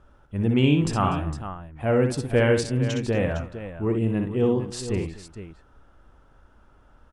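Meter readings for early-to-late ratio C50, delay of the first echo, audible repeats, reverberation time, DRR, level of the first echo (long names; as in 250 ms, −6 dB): no reverb audible, 62 ms, 3, no reverb audible, no reverb audible, −6.0 dB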